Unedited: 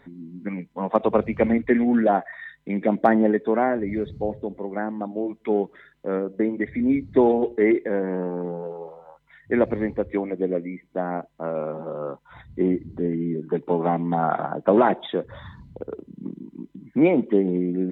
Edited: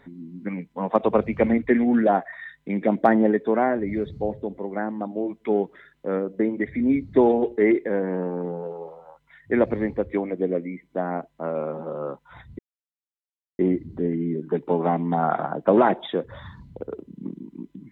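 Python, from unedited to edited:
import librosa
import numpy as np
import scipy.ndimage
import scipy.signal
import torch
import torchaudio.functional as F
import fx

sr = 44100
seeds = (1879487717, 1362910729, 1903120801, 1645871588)

y = fx.edit(x, sr, fx.insert_silence(at_s=12.59, length_s=1.0), tone=tone)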